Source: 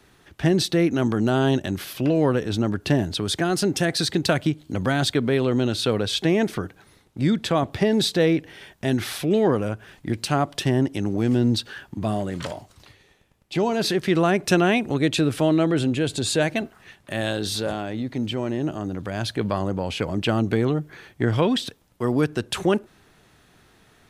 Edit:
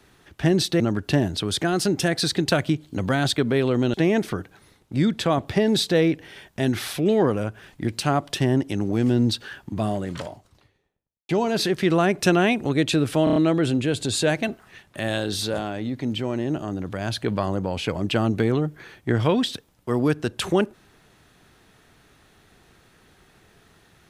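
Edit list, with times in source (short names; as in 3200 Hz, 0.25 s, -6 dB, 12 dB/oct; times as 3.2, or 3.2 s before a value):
0.8–2.57 cut
5.71–6.19 cut
12.1–13.54 studio fade out
15.49 stutter 0.03 s, 5 plays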